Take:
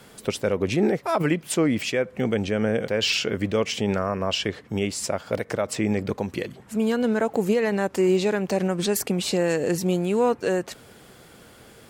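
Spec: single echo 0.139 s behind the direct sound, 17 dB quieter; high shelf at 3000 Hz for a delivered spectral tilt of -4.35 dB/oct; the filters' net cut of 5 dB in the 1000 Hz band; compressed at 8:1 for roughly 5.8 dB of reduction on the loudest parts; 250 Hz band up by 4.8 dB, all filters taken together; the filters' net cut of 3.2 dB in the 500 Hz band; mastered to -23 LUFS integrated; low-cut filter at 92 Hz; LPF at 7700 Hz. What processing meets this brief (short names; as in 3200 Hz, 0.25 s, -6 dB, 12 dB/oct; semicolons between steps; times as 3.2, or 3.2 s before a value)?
HPF 92 Hz; LPF 7700 Hz; bell 250 Hz +8.5 dB; bell 500 Hz -6.5 dB; bell 1000 Hz -6 dB; high shelf 3000 Hz +7.5 dB; compressor 8:1, threshold -20 dBFS; echo 0.139 s -17 dB; gain +2.5 dB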